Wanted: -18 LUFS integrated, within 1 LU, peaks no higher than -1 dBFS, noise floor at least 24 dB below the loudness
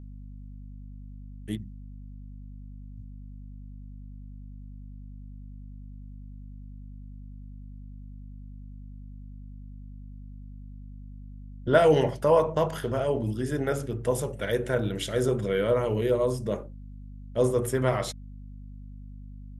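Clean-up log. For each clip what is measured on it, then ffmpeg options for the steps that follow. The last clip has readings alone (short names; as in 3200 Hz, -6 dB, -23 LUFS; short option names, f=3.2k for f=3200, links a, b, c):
hum 50 Hz; harmonics up to 250 Hz; hum level -40 dBFS; loudness -26.5 LUFS; peak -8.0 dBFS; loudness target -18.0 LUFS
-> -af "bandreject=f=50:t=h:w=6,bandreject=f=100:t=h:w=6,bandreject=f=150:t=h:w=6,bandreject=f=200:t=h:w=6,bandreject=f=250:t=h:w=6"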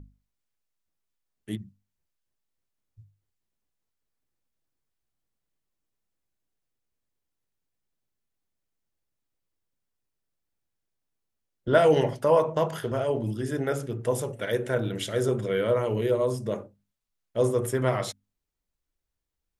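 hum none; loudness -26.5 LUFS; peak -8.0 dBFS; loudness target -18.0 LUFS
-> -af "volume=8.5dB,alimiter=limit=-1dB:level=0:latency=1"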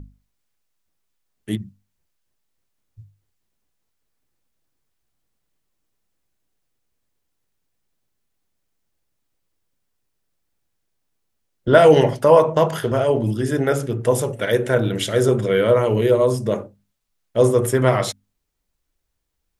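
loudness -18.0 LUFS; peak -1.0 dBFS; noise floor -75 dBFS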